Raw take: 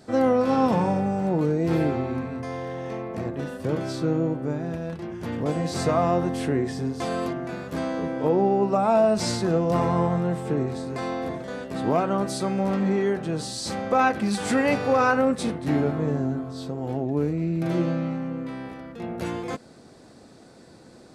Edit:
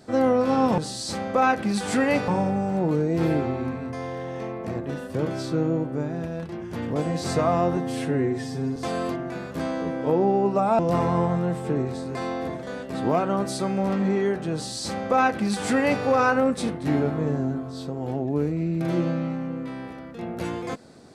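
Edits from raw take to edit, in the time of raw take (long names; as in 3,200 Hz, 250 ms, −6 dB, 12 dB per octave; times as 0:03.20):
0:06.27–0:06.93: time-stretch 1.5×
0:08.96–0:09.60: remove
0:13.35–0:14.85: duplicate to 0:00.78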